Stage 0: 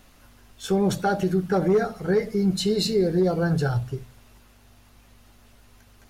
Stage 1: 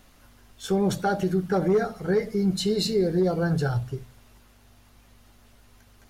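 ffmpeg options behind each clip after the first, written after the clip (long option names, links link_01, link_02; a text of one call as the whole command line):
ffmpeg -i in.wav -af "bandreject=frequency=2600:width=29,volume=-1.5dB" out.wav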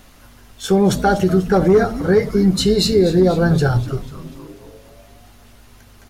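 ffmpeg -i in.wav -filter_complex "[0:a]asplit=7[link_01][link_02][link_03][link_04][link_05][link_06][link_07];[link_02]adelay=245,afreqshift=-140,volume=-14.5dB[link_08];[link_03]adelay=490,afreqshift=-280,volume=-19.4dB[link_09];[link_04]adelay=735,afreqshift=-420,volume=-24.3dB[link_10];[link_05]adelay=980,afreqshift=-560,volume=-29.1dB[link_11];[link_06]adelay=1225,afreqshift=-700,volume=-34dB[link_12];[link_07]adelay=1470,afreqshift=-840,volume=-38.9dB[link_13];[link_01][link_08][link_09][link_10][link_11][link_12][link_13]amix=inputs=7:normalize=0,volume=9dB" out.wav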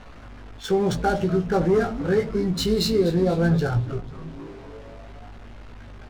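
ffmpeg -i in.wav -filter_complex "[0:a]aeval=exprs='val(0)+0.5*0.0299*sgn(val(0))':channel_layout=same,adynamicsmooth=sensitivity=4:basefreq=1500,asplit=2[link_01][link_02];[link_02]adelay=18,volume=-5dB[link_03];[link_01][link_03]amix=inputs=2:normalize=0,volume=-8dB" out.wav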